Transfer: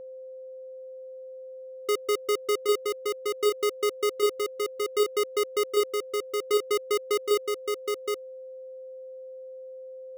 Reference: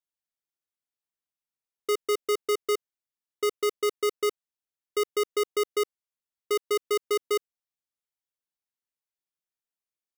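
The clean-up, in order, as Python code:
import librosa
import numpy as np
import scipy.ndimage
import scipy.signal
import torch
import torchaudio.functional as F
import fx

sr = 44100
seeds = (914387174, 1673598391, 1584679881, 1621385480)

y = fx.notch(x, sr, hz=520.0, q=30.0)
y = fx.fix_echo_inverse(y, sr, delay_ms=769, level_db=-3.5)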